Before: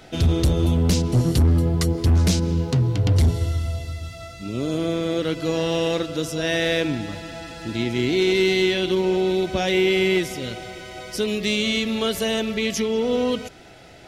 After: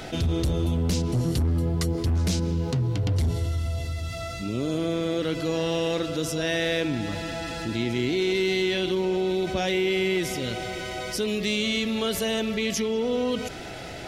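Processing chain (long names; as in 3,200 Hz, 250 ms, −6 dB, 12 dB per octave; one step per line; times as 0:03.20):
envelope flattener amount 50%
level −7.5 dB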